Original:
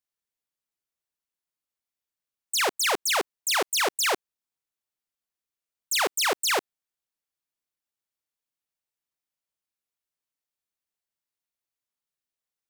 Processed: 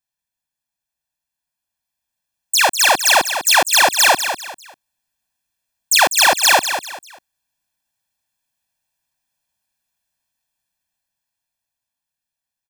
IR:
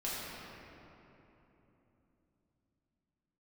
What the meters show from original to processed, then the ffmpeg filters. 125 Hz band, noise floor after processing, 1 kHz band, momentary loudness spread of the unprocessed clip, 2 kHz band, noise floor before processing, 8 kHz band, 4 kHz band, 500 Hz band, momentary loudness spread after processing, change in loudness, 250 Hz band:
can't be measured, −85 dBFS, +13.0 dB, 5 LU, +13.0 dB, below −85 dBFS, +12.5 dB, +11.5 dB, +8.0 dB, 12 LU, +12.0 dB, +6.0 dB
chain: -af "aecho=1:1:1.2:0.99,dynaudnorm=framelen=400:gausssize=11:maxgain=8dB,aecho=1:1:198|396|594:0.355|0.106|0.0319,volume=1.5dB"

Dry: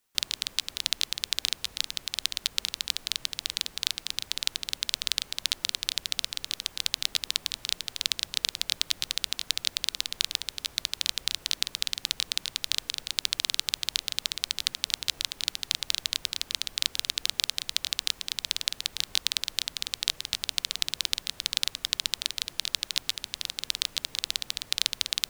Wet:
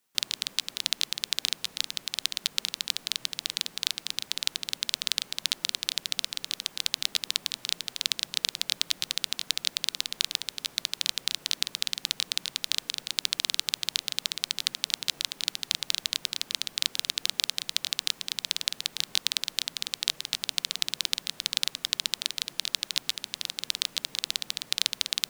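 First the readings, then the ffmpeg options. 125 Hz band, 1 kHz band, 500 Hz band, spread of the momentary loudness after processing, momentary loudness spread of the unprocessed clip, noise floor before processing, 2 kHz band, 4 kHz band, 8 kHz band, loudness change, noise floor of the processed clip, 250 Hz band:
can't be measured, 0.0 dB, +0.5 dB, 3 LU, 3 LU, −53 dBFS, 0.0 dB, 0.0 dB, 0.0 dB, 0.0 dB, −54 dBFS, +2.0 dB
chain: -af "lowshelf=frequency=110:width_type=q:width=1.5:gain=-12"

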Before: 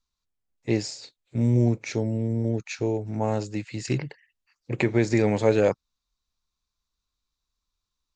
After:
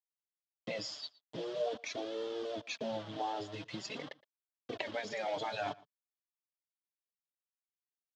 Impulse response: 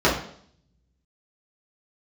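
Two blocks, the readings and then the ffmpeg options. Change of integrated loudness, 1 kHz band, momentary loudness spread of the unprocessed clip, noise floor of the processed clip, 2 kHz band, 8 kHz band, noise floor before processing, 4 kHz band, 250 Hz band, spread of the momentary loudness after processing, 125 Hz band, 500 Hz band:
−14.5 dB, −4.0 dB, 14 LU, below −85 dBFS, −9.0 dB, −11.5 dB, −84 dBFS, −2.5 dB, −20.0 dB, 10 LU, −28.5 dB, −12.5 dB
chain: -filter_complex "[0:a]aemphasis=mode=production:type=cd,afftfilt=real='re*lt(hypot(re,im),0.251)':imag='im*lt(hypot(re,im),0.251)':win_size=1024:overlap=0.75,afftdn=noise_reduction=13:noise_floor=-35,acompressor=threshold=-40dB:ratio=10,aeval=exprs='0.224*(cos(1*acos(clip(val(0)/0.224,-1,1)))-cos(1*PI/2))+0.0631*(cos(2*acos(clip(val(0)/0.224,-1,1)))-cos(2*PI/2))+0.00501*(cos(4*acos(clip(val(0)/0.224,-1,1)))-cos(4*PI/2))+0.0224*(cos(5*acos(clip(val(0)/0.224,-1,1)))-cos(5*PI/2))+0.0178*(cos(6*acos(clip(val(0)/0.224,-1,1)))-cos(6*PI/2))':channel_layout=same,acrusher=bits=7:mix=0:aa=0.000001,flanger=delay=2.2:depth=4.7:regen=4:speed=0.44:shape=sinusoidal,highpass=150,equalizer=frequency=190:width_type=q:width=4:gain=-6,equalizer=frequency=350:width_type=q:width=4:gain=-5,equalizer=frequency=640:width_type=q:width=4:gain=9,equalizer=frequency=1100:width_type=q:width=4:gain=3,equalizer=frequency=2300:width_type=q:width=4:gain=-6,equalizer=frequency=3300:width_type=q:width=4:gain=10,lowpass=frequency=5200:width=0.5412,lowpass=frequency=5200:width=1.3066,asplit=2[link_01][link_02];[link_02]adelay=116.6,volume=-22dB,highshelf=frequency=4000:gain=-2.62[link_03];[link_01][link_03]amix=inputs=2:normalize=0,volume=4dB"

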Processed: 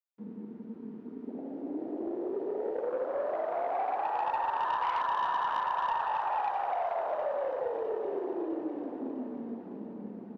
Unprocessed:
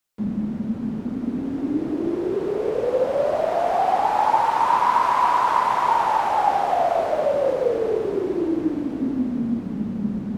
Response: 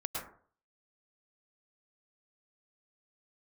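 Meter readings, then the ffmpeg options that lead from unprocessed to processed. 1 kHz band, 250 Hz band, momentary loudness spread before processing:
−11.5 dB, −14.0 dB, 8 LU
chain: -filter_complex "[0:a]afwtdn=0.0631,highpass=580,equalizer=frequency=8400:width_type=o:width=2.2:gain=-15,acrossover=split=1600[link_01][link_02];[link_01]acompressor=threshold=-29dB:ratio=6[link_03];[link_03][link_02]amix=inputs=2:normalize=0,asoftclip=type=tanh:threshold=-23.5dB,asplit=2[link_04][link_05];[link_05]aecho=0:1:655|1310|1965|2620|3275|3930:0.224|0.132|0.0779|0.046|0.0271|0.016[link_06];[link_04][link_06]amix=inputs=2:normalize=0"

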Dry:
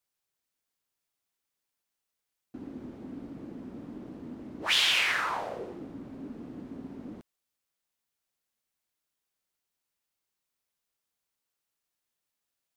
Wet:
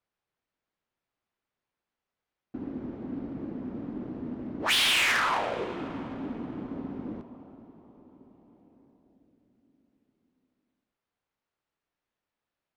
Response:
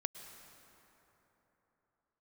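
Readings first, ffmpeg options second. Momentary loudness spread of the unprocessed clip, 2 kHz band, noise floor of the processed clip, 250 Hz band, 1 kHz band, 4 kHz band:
20 LU, +2.5 dB, below −85 dBFS, +6.0 dB, +4.5 dB, +1.0 dB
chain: -filter_complex "[0:a]volume=26.5dB,asoftclip=hard,volume=-26.5dB,asplit=2[link_01][link_02];[1:a]atrim=start_sample=2205,asetrate=25137,aresample=44100[link_03];[link_02][link_03]afir=irnorm=-1:irlink=0,volume=-2.5dB[link_04];[link_01][link_04]amix=inputs=2:normalize=0,adynamicsmooth=sensitivity=4.5:basefreq=2600"

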